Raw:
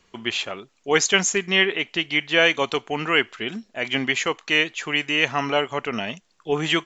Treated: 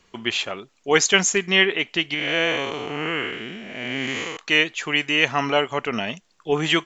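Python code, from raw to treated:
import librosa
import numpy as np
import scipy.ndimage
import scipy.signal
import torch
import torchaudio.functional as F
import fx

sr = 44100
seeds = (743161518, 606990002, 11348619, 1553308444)

y = fx.spec_blur(x, sr, span_ms=256.0, at=(2.14, 4.37))
y = y * 10.0 ** (1.5 / 20.0)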